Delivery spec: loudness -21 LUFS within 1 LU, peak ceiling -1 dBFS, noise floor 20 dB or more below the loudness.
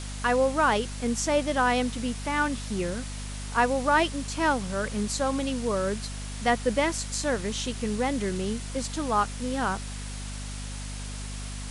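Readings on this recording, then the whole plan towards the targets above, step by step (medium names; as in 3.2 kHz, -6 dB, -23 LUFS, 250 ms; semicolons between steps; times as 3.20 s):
hum 50 Hz; highest harmonic 250 Hz; hum level -34 dBFS; noise floor -36 dBFS; noise floor target -48 dBFS; loudness -28.0 LUFS; peak level -10.5 dBFS; loudness target -21.0 LUFS
-> de-hum 50 Hz, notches 5; noise reduction 12 dB, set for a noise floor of -36 dBFS; trim +7 dB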